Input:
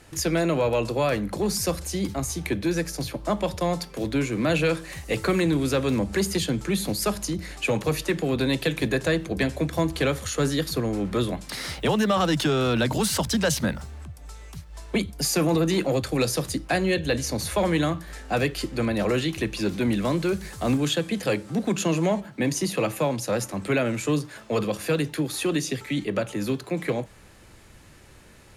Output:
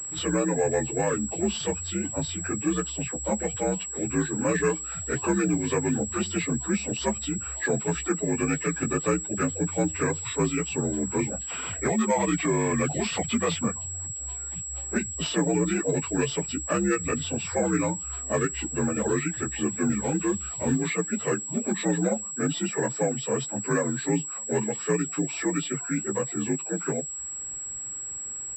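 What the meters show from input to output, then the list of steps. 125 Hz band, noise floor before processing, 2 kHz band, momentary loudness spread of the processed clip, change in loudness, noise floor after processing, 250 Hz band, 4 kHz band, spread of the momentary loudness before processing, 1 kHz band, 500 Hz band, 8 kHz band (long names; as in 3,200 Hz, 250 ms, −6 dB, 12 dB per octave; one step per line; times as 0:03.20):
−3.5 dB, −50 dBFS, −3.0 dB, 5 LU, −1.5 dB, −36 dBFS, −1.5 dB, −7.0 dB, 6 LU, −2.0 dB, −2.5 dB, +6.0 dB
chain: partials spread apart or drawn together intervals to 83%
reverb reduction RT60 0.54 s
switching amplifier with a slow clock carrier 7,700 Hz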